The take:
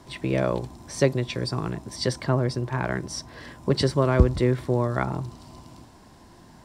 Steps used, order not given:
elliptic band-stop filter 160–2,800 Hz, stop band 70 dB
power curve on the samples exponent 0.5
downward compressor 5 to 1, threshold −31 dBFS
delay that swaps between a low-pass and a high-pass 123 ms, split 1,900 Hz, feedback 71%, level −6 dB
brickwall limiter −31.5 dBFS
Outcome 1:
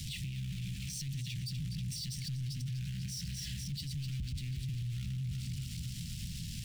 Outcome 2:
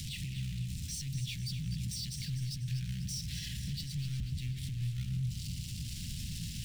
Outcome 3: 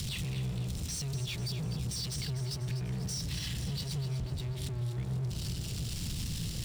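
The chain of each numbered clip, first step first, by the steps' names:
delay that swaps between a low-pass and a high-pass, then downward compressor, then power curve on the samples, then elliptic band-stop filter, then brickwall limiter
power curve on the samples, then elliptic band-stop filter, then downward compressor, then brickwall limiter, then delay that swaps between a low-pass and a high-pass
elliptic band-stop filter, then power curve on the samples, then brickwall limiter, then delay that swaps between a low-pass and a high-pass, then downward compressor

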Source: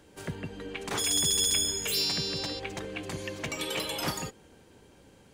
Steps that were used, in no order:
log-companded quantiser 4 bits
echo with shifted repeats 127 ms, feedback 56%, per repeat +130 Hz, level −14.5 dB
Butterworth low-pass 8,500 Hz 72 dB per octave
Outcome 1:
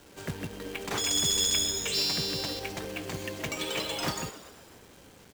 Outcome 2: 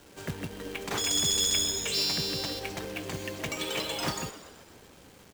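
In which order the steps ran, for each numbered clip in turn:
echo with shifted repeats, then Butterworth low-pass, then log-companded quantiser
Butterworth low-pass, then log-companded quantiser, then echo with shifted repeats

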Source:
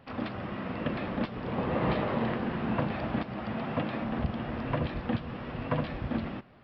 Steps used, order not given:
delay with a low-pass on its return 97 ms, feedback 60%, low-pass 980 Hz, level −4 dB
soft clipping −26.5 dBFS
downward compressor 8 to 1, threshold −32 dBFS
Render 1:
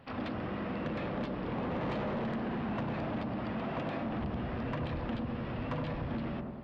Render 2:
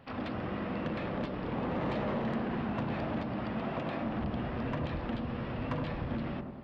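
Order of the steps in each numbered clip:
delay with a low-pass on its return, then soft clipping, then downward compressor
soft clipping, then downward compressor, then delay with a low-pass on its return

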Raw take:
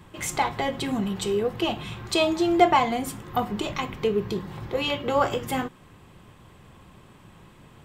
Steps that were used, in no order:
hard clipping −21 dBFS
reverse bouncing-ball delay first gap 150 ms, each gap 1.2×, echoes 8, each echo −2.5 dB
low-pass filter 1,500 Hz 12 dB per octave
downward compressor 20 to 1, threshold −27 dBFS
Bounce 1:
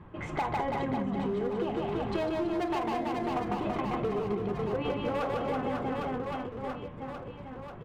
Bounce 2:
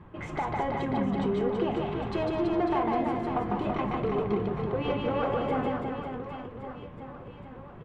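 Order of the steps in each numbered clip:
low-pass filter, then hard clipping, then reverse bouncing-ball delay, then downward compressor
hard clipping, then low-pass filter, then downward compressor, then reverse bouncing-ball delay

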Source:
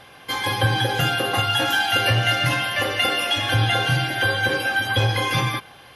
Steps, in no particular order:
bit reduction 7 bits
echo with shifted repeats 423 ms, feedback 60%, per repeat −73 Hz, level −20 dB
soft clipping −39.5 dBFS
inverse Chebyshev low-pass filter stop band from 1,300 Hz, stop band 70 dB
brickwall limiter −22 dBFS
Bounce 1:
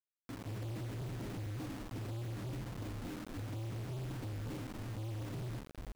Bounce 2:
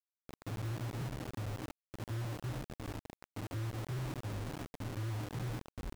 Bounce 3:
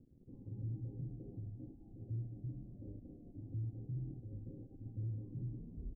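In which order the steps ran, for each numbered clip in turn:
inverse Chebyshev low-pass filter, then echo with shifted repeats, then brickwall limiter, then bit reduction, then soft clipping
echo with shifted repeats, then brickwall limiter, then inverse Chebyshev low-pass filter, then soft clipping, then bit reduction
echo with shifted repeats, then brickwall limiter, then soft clipping, then bit reduction, then inverse Chebyshev low-pass filter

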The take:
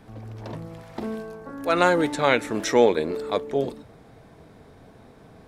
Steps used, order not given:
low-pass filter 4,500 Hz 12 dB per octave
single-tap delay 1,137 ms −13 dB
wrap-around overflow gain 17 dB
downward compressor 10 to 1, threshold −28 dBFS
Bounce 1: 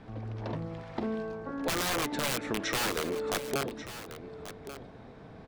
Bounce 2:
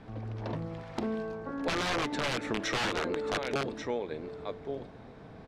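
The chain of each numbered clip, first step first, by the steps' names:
low-pass filter, then wrap-around overflow, then downward compressor, then single-tap delay
single-tap delay, then wrap-around overflow, then low-pass filter, then downward compressor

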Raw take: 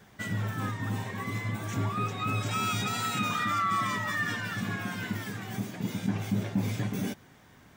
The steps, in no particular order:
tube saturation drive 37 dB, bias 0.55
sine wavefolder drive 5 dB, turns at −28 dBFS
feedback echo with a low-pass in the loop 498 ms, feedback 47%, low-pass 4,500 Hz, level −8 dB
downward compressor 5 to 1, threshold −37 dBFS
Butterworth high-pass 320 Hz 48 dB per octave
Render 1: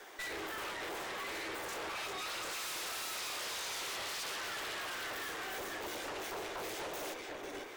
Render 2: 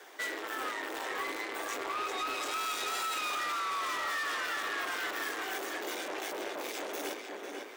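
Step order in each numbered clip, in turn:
feedback echo with a low-pass in the loop, then sine wavefolder, then Butterworth high-pass, then tube saturation, then downward compressor
feedback echo with a low-pass in the loop, then tube saturation, then Butterworth high-pass, then downward compressor, then sine wavefolder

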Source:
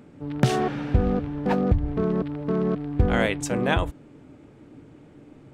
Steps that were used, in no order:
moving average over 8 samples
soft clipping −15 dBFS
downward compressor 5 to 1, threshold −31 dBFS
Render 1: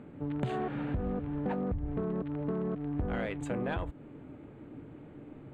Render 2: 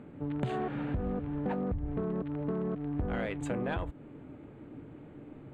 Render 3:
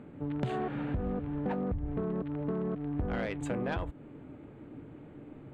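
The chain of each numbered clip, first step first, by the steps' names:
soft clipping, then downward compressor, then moving average
soft clipping, then moving average, then downward compressor
moving average, then soft clipping, then downward compressor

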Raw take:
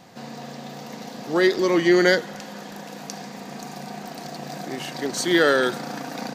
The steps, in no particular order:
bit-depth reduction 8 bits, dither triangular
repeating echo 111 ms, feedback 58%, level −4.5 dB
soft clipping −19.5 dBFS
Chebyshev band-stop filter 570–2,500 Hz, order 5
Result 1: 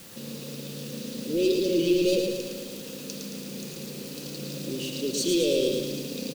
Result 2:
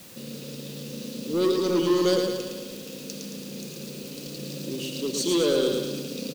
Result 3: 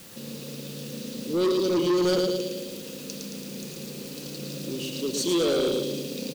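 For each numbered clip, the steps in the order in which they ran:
soft clipping, then Chebyshev band-stop filter, then bit-depth reduction, then repeating echo
Chebyshev band-stop filter, then soft clipping, then repeating echo, then bit-depth reduction
Chebyshev band-stop filter, then bit-depth reduction, then repeating echo, then soft clipping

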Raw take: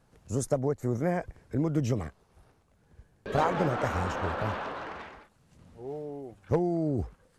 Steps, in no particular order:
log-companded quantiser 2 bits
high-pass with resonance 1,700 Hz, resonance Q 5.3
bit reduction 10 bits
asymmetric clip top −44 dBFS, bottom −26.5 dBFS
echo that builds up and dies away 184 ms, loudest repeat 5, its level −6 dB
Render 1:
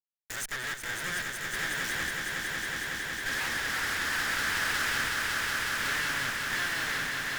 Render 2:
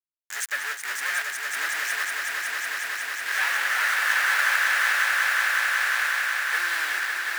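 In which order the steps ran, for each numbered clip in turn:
log-companded quantiser, then bit reduction, then high-pass with resonance, then asymmetric clip, then echo that builds up and dies away
asymmetric clip, then log-companded quantiser, then high-pass with resonance, then bit reduction, then echo that builds up and dies away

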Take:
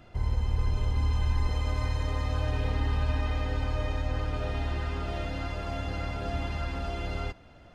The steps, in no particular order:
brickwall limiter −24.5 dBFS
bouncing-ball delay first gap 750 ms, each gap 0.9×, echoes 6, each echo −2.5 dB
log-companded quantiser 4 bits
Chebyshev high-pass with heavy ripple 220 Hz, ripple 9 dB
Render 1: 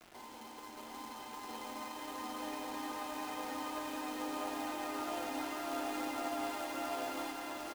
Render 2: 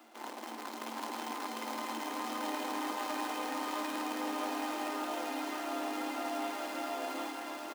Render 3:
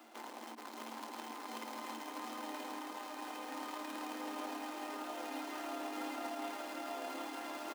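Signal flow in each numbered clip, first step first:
brickwall limiter, then Chebyshev high-pass with heavy ripple, then log-companded quantiser, then bouncing-ball delay
log-companded quantiser, then Chebyshev high-pass with heavy ripple, then brickwall limiter, then bouncing-ball delay
log-companded quantiser, then bouncing-ball delay, then brickwall limiter, then Chebyshev high-pass with heavy ripple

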